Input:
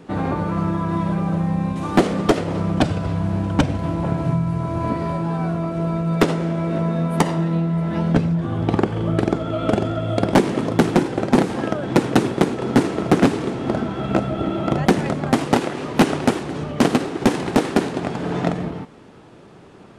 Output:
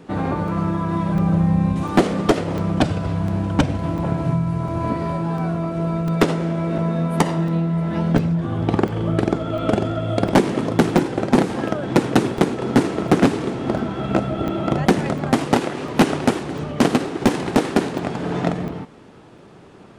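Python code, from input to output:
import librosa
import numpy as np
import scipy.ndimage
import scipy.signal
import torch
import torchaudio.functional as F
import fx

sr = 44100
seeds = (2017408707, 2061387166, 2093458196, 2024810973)

y = fx.low_shelf(x, sr, hz=140.0, db=10.0, at=(1.14, 1.83))
y = fx.buffer_crackle(y, sr, first_s=0.48, period_s=0.7, block=128, kind='zero')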